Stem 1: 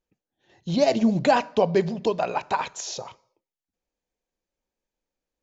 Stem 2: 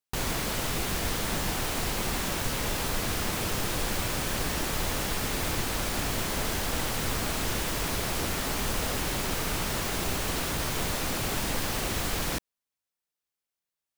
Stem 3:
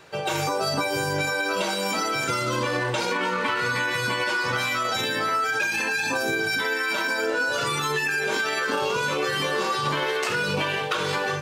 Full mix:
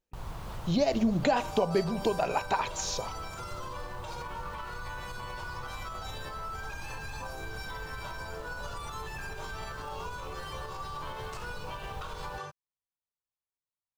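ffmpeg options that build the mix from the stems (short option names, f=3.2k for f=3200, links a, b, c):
-filter_complex "[0:a]acompressor=threshold=-23dB:ratio=3,volume=-1dB,asplit=2[a][b];[1:a]bass=f=250:g=10,treble=f=4k:g=-10,volume=-11.5dB[c];[2:a]adelay=1100,volume=-10dB[d];[b]apad=whole_len=616327[e];[c][e]sidechaincompress=threshold=-30dB:ratio=8:attack=16:release=222[f];[f][d]amix=inputs=2:normalize=0,equalizer=f=250:t=o:w=1:g=-9,equalizer=f=1k:t=o:w=1:g=8,equalizer=f=2k:t=o:w=1:g=-7,alimiter=level_in=5.5dB:limit=-24dB:level=0:latency=1:release=238,volume=-5.5dB,volume=0dB[g];[a][g]amix=inputs=2:normalize=0"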